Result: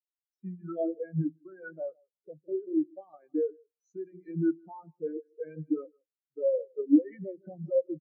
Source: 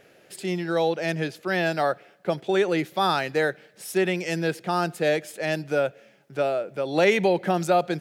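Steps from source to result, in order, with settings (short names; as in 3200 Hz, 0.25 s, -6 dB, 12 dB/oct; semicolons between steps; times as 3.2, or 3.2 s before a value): nonlinear frequency compression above 3400 Hz 1.5:1; high shelf 5800 Hz +5 dB; limiter -17.5 dBFS, peak gain reduction 10.5 dB; bell 65 Hz -4.5 dB 2.6 oct; compressor 6:1, threshold -29 dBFS, peak gain reduction 7.5 dB; formant shift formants -2 st; feedback echo 0.16 s, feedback 27%, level -8 dB; FDN reverb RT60 0.47 s, low-frequency decay 1.25×, high-frequency decay 0.75×, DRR 11 dB; spectral expander 4:1; gain +8 dB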